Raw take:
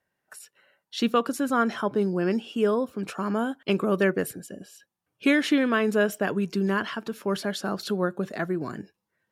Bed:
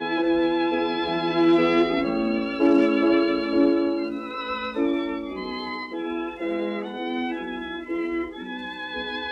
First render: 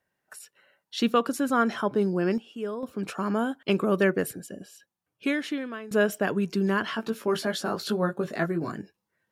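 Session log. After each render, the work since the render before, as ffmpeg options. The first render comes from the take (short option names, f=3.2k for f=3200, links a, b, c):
-filter_complex "[0:a]asettb=1/sr,asplit=3[a][b][c];[a]atrim=end=6.854[d];[b]atrim=start=6.85:end=8.72,asetpts=PTS-STARTPTS,afade=t=in:d=0.004:c=qsin,afade=t=out:st=1.866:d=0.004:c=qsin,asplit=2[e][f];[f]adelay=18,volume=-4dB[g];[e][g]amix=inputs=2:normalize=0,atrim=end_sample=82467[h];[c]atrim=start=8.716[i];[d][h]acrossfade=d=0.004:c1=hsin:c2=qsin[j];[j][i]acrossfade=d=0.004:c1=qsin:c2=hsin,asplit=4[k][l][m][n];[k]atrim=end=2.38,asetpts=PTS-STARTPTS,afade=t=out:st=2.16:d=0.22:c=log:silence=0.334965[o];[l]atrim=start=2.38:end=2.83,asetpts=PTS-STARTPTS,volume=-9.5dB[p];[m]atrim=start=2.83:end=5.91,asetpts=PTS-STARTPTS,afade=t=in:d=0.22:c=log:silence=0.334965,afade=t=out:st=1.77:d=1.31:silence=0.105925[q];[n]atrim=start=5.91,asetpts=PTS-STARTPTS,afade=t=in:d=0.004:c=hsin:silence=0.105925[r];[o][p][q][r]concat=n=4:v=0:a=1"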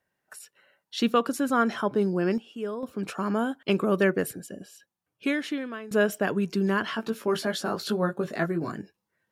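-af anull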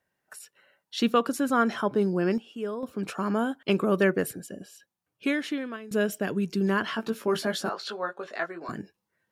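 -filter_complex "[0:a]asettb=1/sr,asplit=3[a][b][c];[a]atrim=end=5.764[d];[b]atrim=start=5.76:end=6.61,asetpts=PTS-STARTPTS,afade=t=in:d=0.004:c=qsin,afade=t=out:st=0.846:d=0.004:c=qsin,equalizer=f=1k:t=o:w=2:g=-7[e];[c]atrim=start=6.606[f];[d][e]acrossfade=d=0.004:c1=hsin:c2=qsin[g];[g][f]acrossfade=d=0.004:c1=qsin:c2=hsin,asettb=1/sr,asplit=3[h][i][j];[h]atrim=end=7.694[k];[i]atrim=start=7.69:end=8.69,asetpts=PTS-STARTPTS,afade=t=in:d=0.004:c=qsin,afade=t=out:st=0.996:d=0.004:c=qsin,highpass=630,lowpass=5.3k[l];[j]atrim=start=8.686[m];[k][l]acrossfade=d=0.004:c1=hsin:c2=qsin[n];[n][m]acrossfade=d=0.004:c1=qsin:c2=hsin"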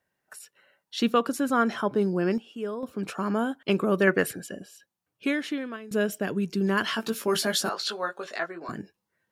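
-filter_complex "[0:a]asettb=1/sr,asplit=3[a][b][c];[a]atrim=end=4.074[d];[b]atrim=start=4.07:end=4.6,asetpts=PTS-STARTPTS,afade=t=in:d=0.004:c=qsin,afade=t=out:st=0.526:d=0.004:c=qsin,equalizer=f=2k:w=0.4:g=8.5[e];[c]atrim=start=4.596[f];[d][e]acrossfade=d=0.004:c1=hsin:c2=qsin[g];[g][f]acrossfade=d=0.004:c1=qsin:c2=hsin,asettb=1/sr,asplit=3[h][i][j];[h]atrim=end=6.774[k];[i]atrim=start=6.77:end=8.39,asetpts=PTS-STARTPTS,afade=t=in:d=0.004:c=qsin,afade=t=out:st=1.616:d=0.004:c=qsin,highshelf=f=3k:g=11[l];[j]atrim=start=8.386[m];[k][l]acrossfade=d=0.004:c1=hsin:c2=qsin[n];[n][m]acrossfade=d=0.004:c1=qsin:c2=hsin"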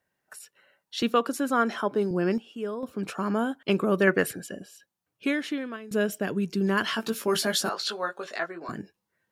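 -filter_complex "[0:a]asettb=1/sr,asplit=3[a][b][c];[a]atrim=end=1.024[d];[b]atrim=start=1.02:end=2.11,asetpts=PTS-STARTPTS,afade=t=in:d=0.004:c=qsin,afade=t=out:st=1.086:d=0.004:c=qsin,highpass=220[e];[c]atrim=start=2.106[f];[d][e]acrossfade=d=0.004:c1=hsin:c2=qsin[g];[g][f]acrossfade=d=0.004:c1=qsin:c2=hsin"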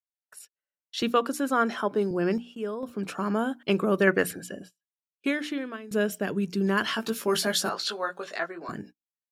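-af "bandreject=f=60:t=h:w=6,bandreject=f=120:t=h:w=6,bandreject=f=180:t=h:w=6,bandreject=f=240:t=h:w=6,bandreject=f=300:t=h:w=6,agate=range=-36dB:threshold=-45dB:ratio=16:detection=peak"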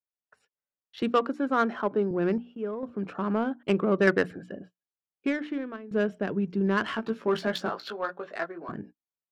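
-af "adynamicsmooth=sensitivity=1:basefreq=1.6k"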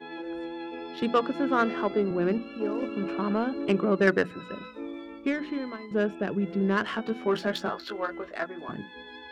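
-filter_complex "[1:a]volume=-14.5dB[a];[0:a][a]amix=inputs=2:normalize=0"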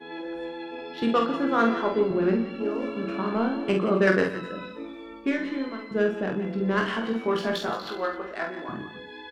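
-filter_complex "[0:a]asplit=2[a][b];[b]adelay=22,volume=-6.5dB[c];[a][c]amix=inputs=2:normalize=0,aecho=1:1:48|121|171|172|261:0.562|0.15|0.106|0.251|0.119"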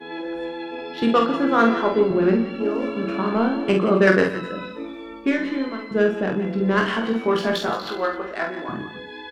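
-af "volume=5dB"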